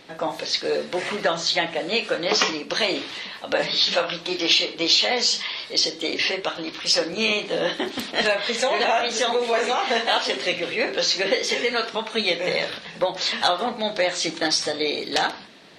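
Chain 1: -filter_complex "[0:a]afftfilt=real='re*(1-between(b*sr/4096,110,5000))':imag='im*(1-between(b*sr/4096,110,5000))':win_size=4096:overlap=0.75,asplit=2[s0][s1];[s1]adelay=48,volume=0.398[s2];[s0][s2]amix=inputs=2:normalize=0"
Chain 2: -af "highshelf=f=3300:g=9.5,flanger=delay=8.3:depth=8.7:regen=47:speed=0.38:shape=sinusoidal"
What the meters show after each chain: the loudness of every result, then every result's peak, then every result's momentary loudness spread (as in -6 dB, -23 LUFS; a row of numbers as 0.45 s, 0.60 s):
-30.5 LUFS, -22.0 LUFS; -9.5 dBFS, -4.5 dBFS; 22 LU, 10 LU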